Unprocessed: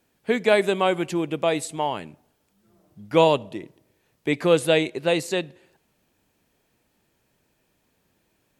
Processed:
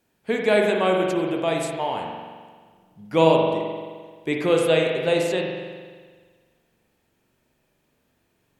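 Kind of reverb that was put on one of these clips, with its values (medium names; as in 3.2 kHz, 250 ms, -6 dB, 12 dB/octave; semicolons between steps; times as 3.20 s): spring tank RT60 1.6 s, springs 43 ms, chirp 50 ms, DRR 0.5 dB; trim -2.5 dB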